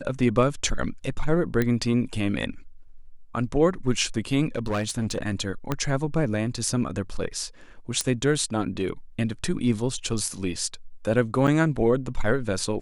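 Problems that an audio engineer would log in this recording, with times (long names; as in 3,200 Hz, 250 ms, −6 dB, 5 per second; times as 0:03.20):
0:01.62: click −11 dBFS
0:04.56–0:05.23: clipping −21.5 dBFS
0:05.72: click −11 dBFS
0:08.01: click −10 dBFS
0:11.47–0:11.48: drop-out 6.5 ms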